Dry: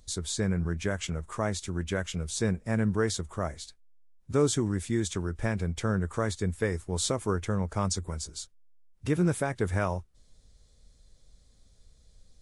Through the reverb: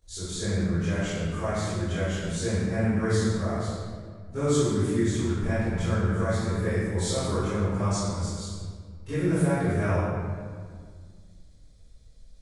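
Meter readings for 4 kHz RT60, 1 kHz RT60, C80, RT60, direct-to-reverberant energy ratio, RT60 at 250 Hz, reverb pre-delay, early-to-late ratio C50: 1.2 s, 1.7 s, -1.5 dB, 1.8 s, -16.5 dB, 2.6 s, 17 ms, -6.0 dB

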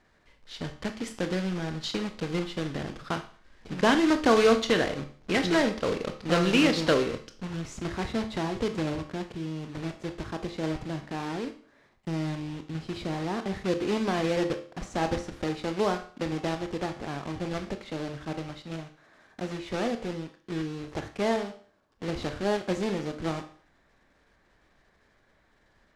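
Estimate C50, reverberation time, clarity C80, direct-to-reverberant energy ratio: 11.5 dB, 0.45 s, 16.5 dB, 7.0 dB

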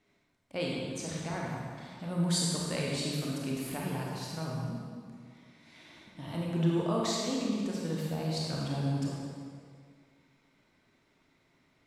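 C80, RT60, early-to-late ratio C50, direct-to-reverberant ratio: 0.0 dB, 2.0 s, -2.0 dB, -3.5 dB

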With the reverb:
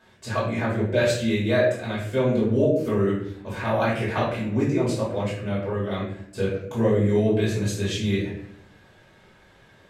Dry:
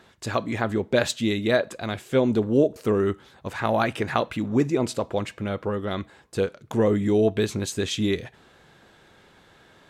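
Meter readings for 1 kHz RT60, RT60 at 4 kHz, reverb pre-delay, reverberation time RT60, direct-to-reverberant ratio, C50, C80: 0.55 s, 0.45 s, 3 ms, 0.65 s, -8.5 dB, 2.5 dB, 6.5 dB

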